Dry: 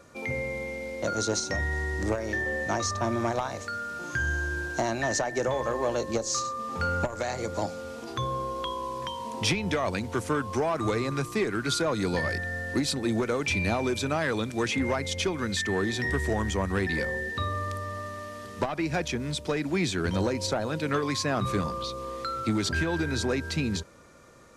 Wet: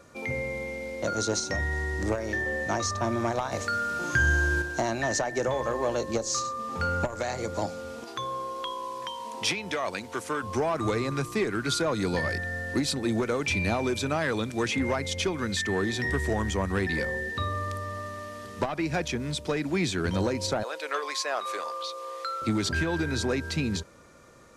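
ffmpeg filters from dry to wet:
ffmpeg -i in.wav -filter_complex "[0:a]asettb=1/sr,asplit=3[link_01][link_02][link_03];[link_01]atrim=end=8.044[link_04];[link_02]atrim=start=8.04:end=10.43,asetpts=PTS-STARTPTS,afade=type=in:duration=0.004:curve=qsin,afade=type=out:start_time=2.386:duration=0.004:curve=qsin,highpass=frequency=520:poles=1[link_05];[link_03]atrim=start=10.426[link_06];[link_04][link_05]acrossfade=duration=0.004:curve1=hsin:curve2=qsin[link_07];[link_07][link_06]acrossfade=duration=0.004:curve1=qsin:curve2=hsin,asettb=1/sr,asplit=3[link_08][link_09][link_10];[link_08]atrim=end=20.634[link_11];[link_09]atrim=start=20.63:end=22.42,asetpts=PTS-STARTPTS,afade=type=in:duration=0.004:curve=qsin,afade=type=out:start_time=1.786:duration=0.004:curve=qsin,highpass=frequency=490:width=0.5412,highpass=frequency=490:width=1.3066[link_12];[link_10]atrim=start=22.416[link_13];[link_11][link_12]acrossfade=duration=0.004:curve1=hsin:curve2=qsin[link_14];[link_14][link_13]acrossfade=duration=0.004:curve1=qsin:curve2=hsin,asplit=3[link_15][link_16][link_17];[link_15]atrim=end=3.522[link_18];[link_16]atrim=start=3.518:end=4.622,asetpts=PTS-STARTPTS,volume=5.5dB[link_19];[link_17]atrim=start=4.618[link_20];[link_18][link_19]acrossfade=duration=0.004:curve1=hsin:curve2=hsin[link_21];[link_21][link_20]acrossfade=duration=0.004:curve1=hsin:curve2=hsin" out.wav

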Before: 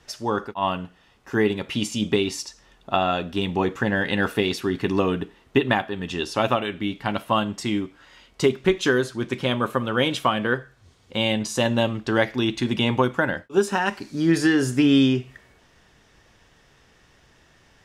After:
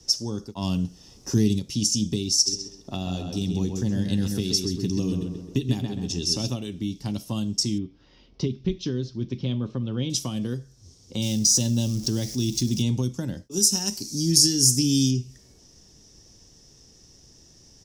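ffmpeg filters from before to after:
ffmpeg -i in.wav -filter_complex "[0:a]asplit=3[link_01][link_02][link_03];[link_01]afade=type=out:start_time=0.53:duration=0.02[link_04];[link_02]acontrast=90,afade=type=in:start_time=0.53:duration=0.02,afade=type=out:start_time=1.58:duration=0.02[link_05];[link_03]afade=type=in:start_time=1.58:duration=0.02[link_06];[link_04][link_05][link_06]amix=inputs=3:normalize=0,asplit=3[link_07][link_08][link_09];[link_07]afade=type=out:start_time=2.46:duration=0.02[link_10];[link_08]asplit=2[link_11][link_12];[link_12]adelay=131,lowpass=frequency=3500:poles=1,volume=-5dB,asplit=2[link_13][link_14];[link_14]adelay=131,lowpass=frequency=3500:poles=1,volume=0.37,asplit=2[link_15][link_16];[link_16]adelay=131,lowpass=frequency=3500:poles=1,volume=0.37,asplit=2[link_17][link_18];[link_18]adelay=131,lowpass=frequency=3500:poles=1,volume=0.37,asplit=2[link_19][link_20];[link_20]adelay=131,lowpass=frequency=3500:poles=1,volume=0.37[link_21];[link_11][link_13][link_15][link_17][link_19][link_21]amix=inputs=6:normalize=0,afade=type=in:start_time=2.46:duration=0.02,afade=type=out:start_time=6.49:duration=0.02[link_22];[link_09]afade=type=in:start_time=6.49:duration=0.02[link_23];[link_10][link_22][link_23]amix=inputs=3:normalize=0,asettb=1/sr,asplit=3[link_24][link_25][link_26];[link_24]atrim=end=7.784[link_27];[link_25]atrim=start=7.78:end=10.1,asetpts=PTS-STARTPTS,afade=type=in:duration=0.004:curve=qsin,afade=type=out:start_time=2.316:duration=0.004:curve=qsin,lowpass=frequency=3500:width=0.5412,lowpass=frequency=3500:width=1.3066[link_28];[link_26]atrim=start=10.096[link_29];[link_27][link_28]acrossfade=duration=0.004:curve1=hsin:curve2=qsin[link_30];[link_30][link_29]acrossfade=duration=0.004:curve1=qsin:curve2=hsin,asettb=1/sr,asplit=3[link_31][link_32][link_33];[link_31]atrim=end=11.224[link_34];[link_32]atrim=start=11.22:end=12.82,asetpts=PTS-STARTPTS,afade=type=in:duration=0.004:curve=qsin,afade=type=out:start_time=1.596:duration=0.004:curve=qsin,aeval=exprs='val(0)+0.5*0.0211*sgn(val(0))':channel_layout=same[link_35];[link_33]atrim=start=12.816[link_36];[link_34][link_35]acrossfade=duration=0.004:curve1=hsin:curve2=qsin[link_37];[link_37][link_36]acrossfade=duration=0.004:curve1=qsin:curve2=hsin,asettb=1/sr,asplit=3[link_38][link_39][link_40];[link_38]atrim=end=13.514[link_41];[link_39]atrim=start=13.51:end=15.11,asetpts=PTS-STARTPTS,afade=type=in:duration=0.004:curve=qsin,afade=type=out:start_time=1.596:duration=0.004:curve=qsin,aemphasis=mode=production:type=50fm[link_42];[link_40]atrim=start=15.106[link_43];[link_41][link_42]acrossfade=duration=0.004:curve1=hsin:curve2=qsin[link_44];[link_44][link_43]acrossfade=duration=0.004:curve1=qsin:curve2=hsin,firequalizer=gain_entry='entry(310,0);entry(630,-9);entry(1500,-19);entry(5200,-2);entry(9300,0)':delay=0.05:min_phase=1,acrossover=split=210|3000[link_45][link_46][link_47];[link_46]acompressor=threshold=-42dB:ratio=3[link_48];[link_45][link_48][link_47]amix=inputs=3:normalize=0,equalizer=frequency=5600:width_type=o:width=0.56:gain=14.5,volume=3.5dB" out.wav

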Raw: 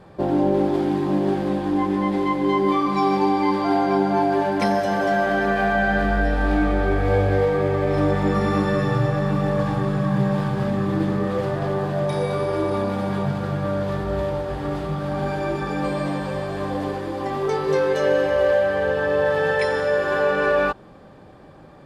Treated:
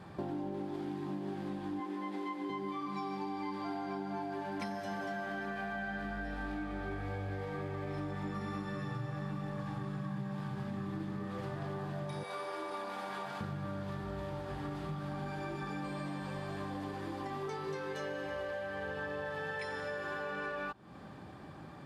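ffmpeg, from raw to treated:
ffmpeg -i in.wav -filter_complex "[0:a]asettb=1/sr,asplit=3[link_01][link_02][link_03];[link_01]atrim=end=1.804[link_04];[link_02]atrim=start=1.8:end=2.5,asetpts=PTS-STARTPTS,afade=type=in:duration=0.004:curve=qsin,afade=type=out:start_time=0.696:duration=0.004:curve=qsin,highpass=frequency=240:width=0.5412,highpass=frequency=240:width=1.3066[link_05];[link_03]atrim=start=2.496[link_06];[link_04][link_05]acrossfade=duration=0.004:curve1=hsin:curve2=qsin[link_07];[link_07][link_06]acrossfade=duration=0.004:curve1=qsin:curve2=hsin,asettb=1/sr,asplit=3[link_08][link_09][link_10];[link_08]atrim=end=12.234[link_11];[link_09]atrim=start=12.23:end=13.41,asetpts=PTS-STARTPTS,afade=type=in:duration=0.004:curve=qsin,afade=type=out:start_time=1.176:duration=0.004:curve=qsin,highpass=530[link_12];[link_10]atrim=start=13.406[link_13];[link_11][link_12]acrossfade=duration=0.004:curve1=hsin:curve2=qsin[link_14];[link_14][link_13]acrossfade=duration=0.004:curve1=qsin:curve2=hsin,highpass=71,equalizer=frequency=510:width_type=o:width=0.7:gain=-9,acompressor=threshold=-36dB:ratio=6,volume=-1.5dB" out.wav

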